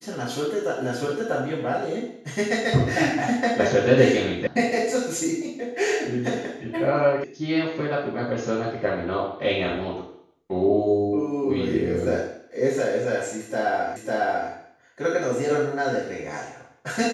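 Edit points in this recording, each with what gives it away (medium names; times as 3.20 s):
4.47 s: sound stops dead
7.24 s: sound stops dead
13.96 s: repeat of the last 0.55 s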